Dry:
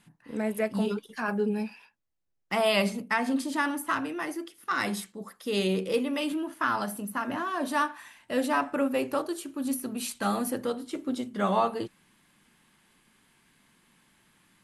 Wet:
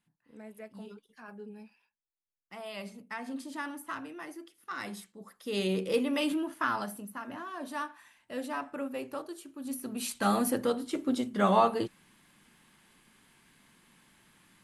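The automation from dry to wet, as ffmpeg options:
ffmpeg -i in.wav -af "volume=11.5dB,afade=type=in:start_time=2.7:duration=0.78:silence=0.398107,afade=type=in:start_time=5.11:duration=1.14:silence=0.298538,afade=type=out:start_time=6.25:duration=0.89:silence=0.316228,afade=type=in:start_time=9.62:duration=0.73:silence=0.281838" out.wav

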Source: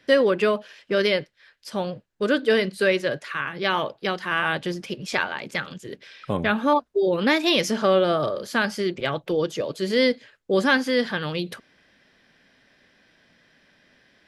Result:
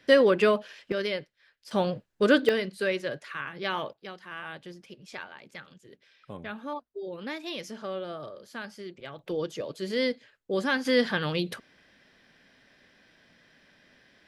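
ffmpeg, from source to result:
ffmpeg -i in.wav -af "asetnsamples=nb_out_samples=441:pad=0,asendcmd='0.92 volume volume -9dB;1.71 volume volume 1dB;2.49 volume volume -7.5dB;3.93 volume volume -16dB;9.19 volume volume -7.5dB;10.85 volume volume -1dB',volume=-1dB" out.wav

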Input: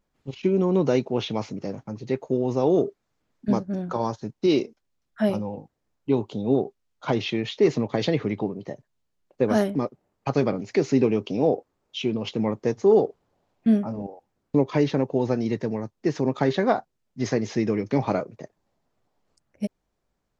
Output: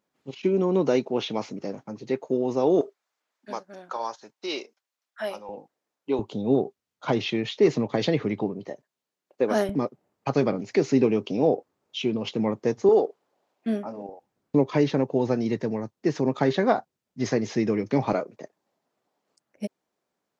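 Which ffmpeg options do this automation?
ffmpeg -i in.wav -af "asetnsamples=nb_out_samples=441:pad=0,asendcmd='2.81 highpass f 750;5.49 highpass f 360;6.19 highpass f 110;8.68 highpass f 290;9.69 highpass f 120;12.89 highpass f 340;14.09 highpass f 110;18.13 highpass f 240',highpass=200" out.wav

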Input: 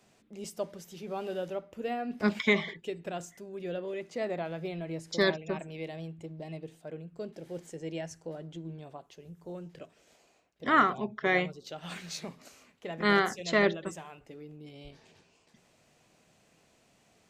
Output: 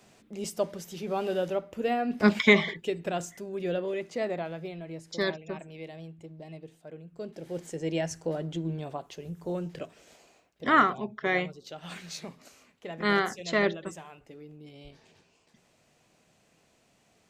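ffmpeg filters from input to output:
ffmpeg -i in.wav -af "volume=18dB,afade=type=out:start_time=3.69:duration=1.07:silence=0.354813,afade=type=in:start_time=7.02:duration=1.2:silence=0.251189,afade=type=out:start_time=9.66:duration=1.36:silence=0.334965" out.wav

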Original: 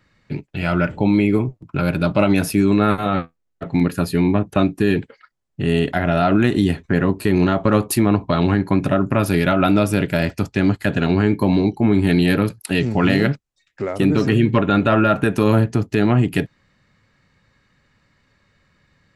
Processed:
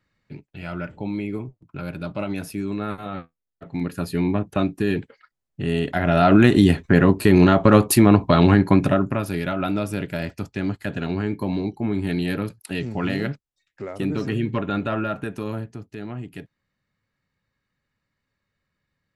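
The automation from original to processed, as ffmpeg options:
ffmpeg -i in.wav -af "volume=2.5dB,afade=type=in:start_time=3.63:duration=0.58:silence=0.446684,afade=type=in:start_time=5.86:duration=0.52:silence=0.421697,afade=type=out:start_time=8.67:duration=0.56:silence=0.281838,afade=type=out:start_time=14.76:duration=1.02:silence=0.354813" out.wav

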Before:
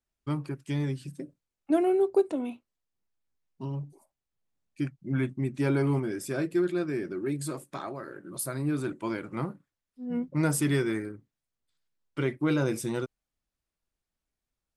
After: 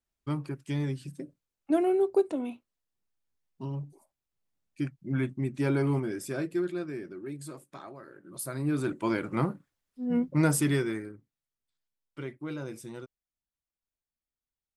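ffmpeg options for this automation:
ffmpeg -i in.wav -af "volume=11.5dB,afade=type=out:start_time=6.09:duration=1.08:silence=0.446684,afade=type=in:start_time=8.21:duration=1.01:silence=0.237137,afade=type=out:start_time=10.08:duration=0.91:silence=0.375837,afade=type=out:start_time=10.99:duration=1.44:silence=0.446684" out.wav

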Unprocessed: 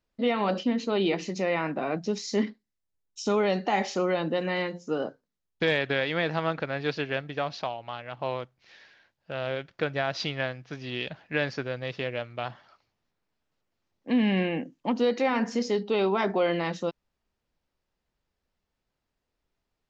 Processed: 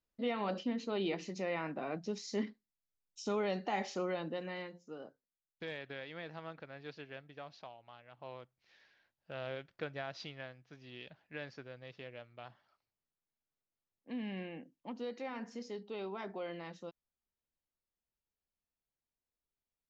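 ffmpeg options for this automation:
ffmpeg -i in.wav -af "volume=-1.5dB,afade=type=out:start_time=4.01:duration=0.91:silence=0.375837,afade=type=in:start_time=8.15:duration=1.23:silence=0.375837,afade=type=out:start_time=9.38:duration=1.05:silence=0.446684" out.wav

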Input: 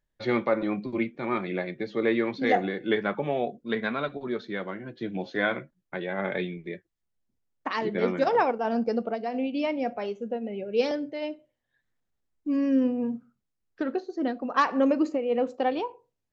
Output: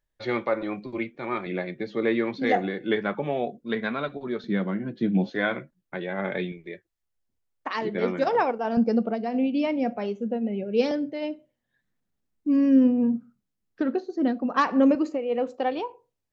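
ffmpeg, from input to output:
ffmpeg -i in.wav -af "asetnsamples=nb_out_samples=441:pad=0,asendcmd='1.46 equalizer g 1.5;4.44 equalizer g 13;5.29 equalizer g 2;6.52 equalizer g -7;7.75 equalizer g 0;8.77 equalizer g 8;14.95 equalizer g -2',equalizer=frequency=200:width_type=o:width=1.2:gain=-5.5" out.wav

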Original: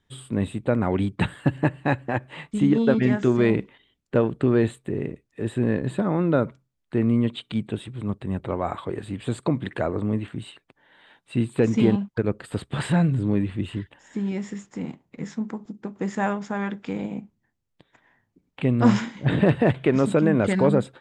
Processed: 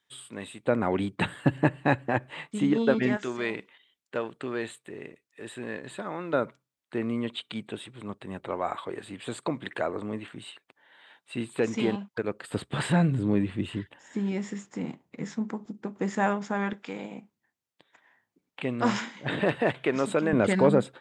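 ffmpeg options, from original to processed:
ffmpeg -i in.wav -af "asetnsamples=nb_out_samples=441:pad=0,asendcmd='0.67 highpass f 320;1.26 highpass f 140;2.3 highpass f 390;3.17 highpass f 1500;6.33 highpass f 630;12.51 highpass f 170;16.73 highpass f 670;20.33 highpass f 200',highpass=frequency=1400:poles=1" out.wav

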